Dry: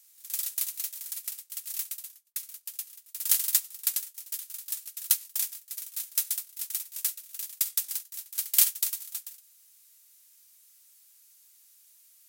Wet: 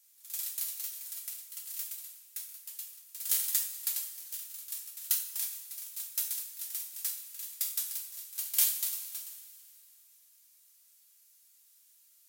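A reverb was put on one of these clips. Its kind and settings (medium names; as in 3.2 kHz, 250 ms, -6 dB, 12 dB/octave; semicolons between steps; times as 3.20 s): two-slope reverb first 0.48 s, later 2.8 s, from -15 dB, DRR -0.5 dB; trim -7.5 dB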